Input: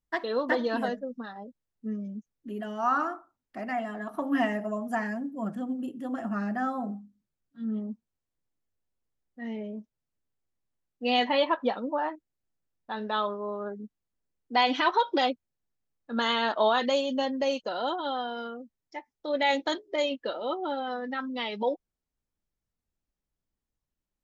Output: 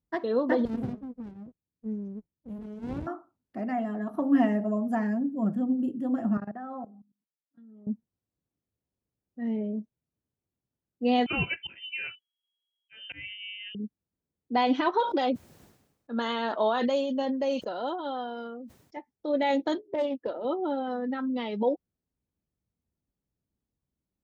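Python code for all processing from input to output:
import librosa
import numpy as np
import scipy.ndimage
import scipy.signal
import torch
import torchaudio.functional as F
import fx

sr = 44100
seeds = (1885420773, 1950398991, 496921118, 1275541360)

y = fx.chain(x, sr, fx.bass_treble(bass_db=4, treble_db=11),
    fx.comb_fb(f0_hz=630.0, decay_s=0.33, harmonics='all', damping=0.0, mix_pct=60),
    fx.running_max(window=65), at=(0.65, 3.07))
y = fx.chain(y, sr, fx.bandpass_q(hz=930.0, q=0.72),
    fx.level_steps(step_db=19), at=(6.37, 7.87))
y = fx.chain(y, sr, fx.env_lowpass(base_hz=520.0, full_db=-24.5),
    fx.auto_swell(attack_ms=207.0),
    fx.freq_invert(carrier_hz=3300), at=(11.26, 13.75))
y = fx.chain(y, sr, fx.low_shelf(hz=340.0, db=-9.0),
    fx.sustainer(db_per_s=62.0), at=(15.0, 18.97))
y = fx.chain(y, sr, fx.highpass(hz=230.0, slope=6),
    fx.high_shelf(hz=2400.0, db=-10.5),
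    fx.doppler_dist(depth_ms=0.17), at=(19.81, 20.45))
y = scipy.signal.sosfilt(scipy.signal.butter(2, 75.0, 'highpass', fs=sr, output='sos'), y)
y = fx.tilt_shelf(y, sr, db=8.0, hz=680.0)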